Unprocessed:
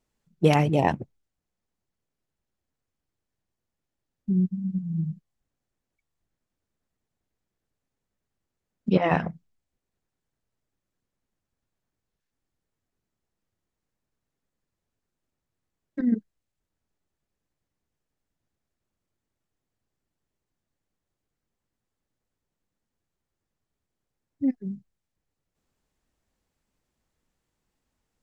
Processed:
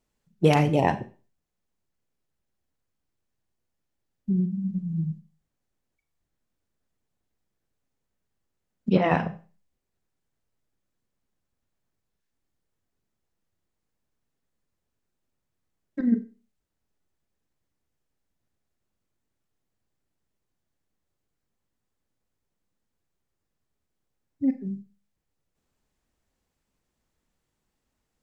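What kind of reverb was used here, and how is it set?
four-comb reverb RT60 0.35 s, combs from 30 ms, DRR 10.5 dB

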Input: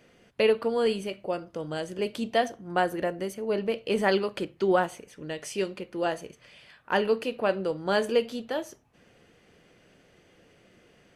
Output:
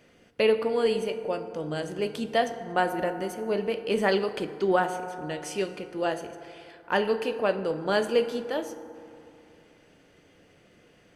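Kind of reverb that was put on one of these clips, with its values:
feedback delay network reverb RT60 2.7 s, high-frequency decay 0.4×, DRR 9.5 dB

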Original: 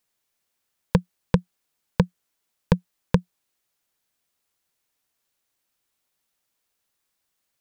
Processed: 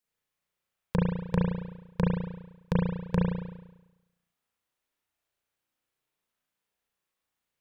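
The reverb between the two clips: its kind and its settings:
spring reverb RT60 1 s, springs 34 ms, chirp 50 ms, DRR −5.5 dB
level −10.5 dB

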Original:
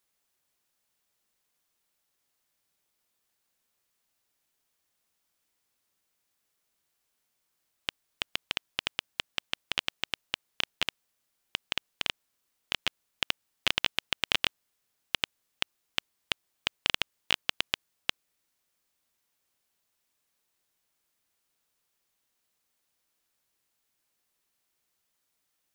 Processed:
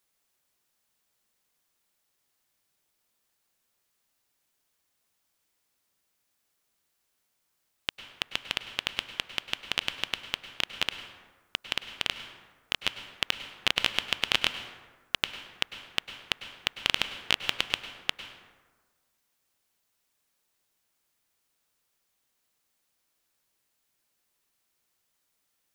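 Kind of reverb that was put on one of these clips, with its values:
dense smooth reverb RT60 1.4 s, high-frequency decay 0.5×, pre-delay 90 ms, DRR 9.5 dB
level +1.5 dB

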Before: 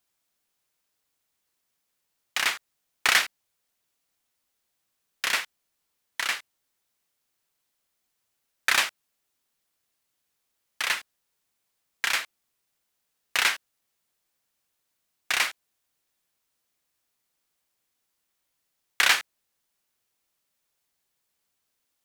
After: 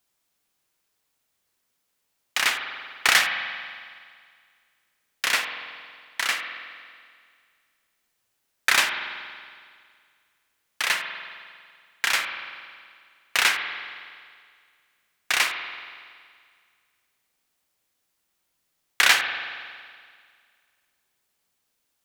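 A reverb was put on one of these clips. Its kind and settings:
spring reverb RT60 2 s, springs 46 ms, chirp 40 ms, DRR 5.5 dB
level +2.5 dB

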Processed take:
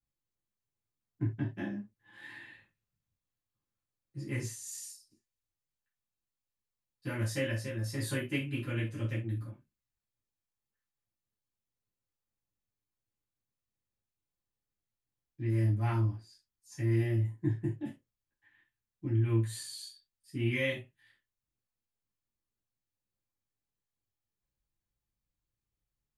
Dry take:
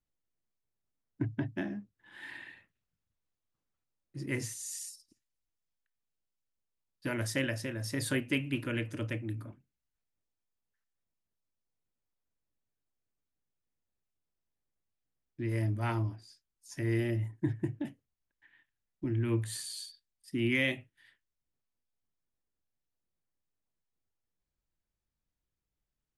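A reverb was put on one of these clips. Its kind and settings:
reverb whose tail is shaped and stops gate 100 ms falling, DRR −8 dB
level −11.5 dB

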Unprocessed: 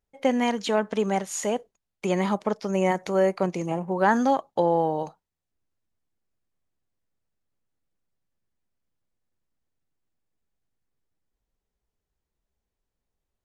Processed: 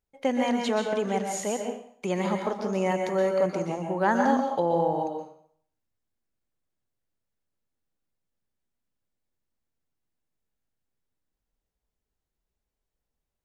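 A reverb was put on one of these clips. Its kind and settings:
dense smooth reverb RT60 0.6 s, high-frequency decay 0.9×, pre-delay 110 ms, DRR 3 dB
level −3.5 dB

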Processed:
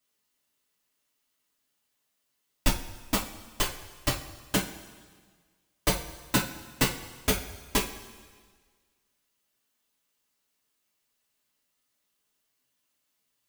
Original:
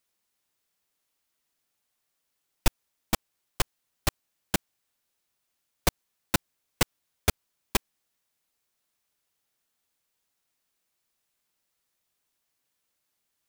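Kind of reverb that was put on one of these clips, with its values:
coupled-rooms reverb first 0.28 s, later 1.6 s, from −17 dB, DRR −5 dB
level −4.5 dB

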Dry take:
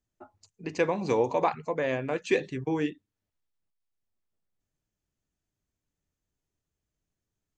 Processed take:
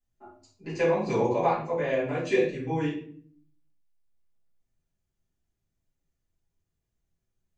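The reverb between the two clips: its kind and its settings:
rectangular room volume 61 cubic metres, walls mixed, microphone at 2.1 metres
level −10 dB

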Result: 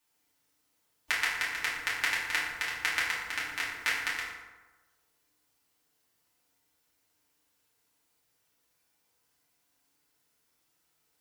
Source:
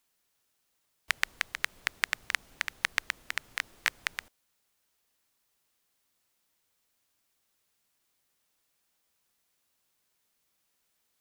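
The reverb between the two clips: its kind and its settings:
feedback delay network reverb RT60 1.2 s, low-frequency decay 1×, high-frequency decay 0.55×, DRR −8.5 dB
level −6 dB

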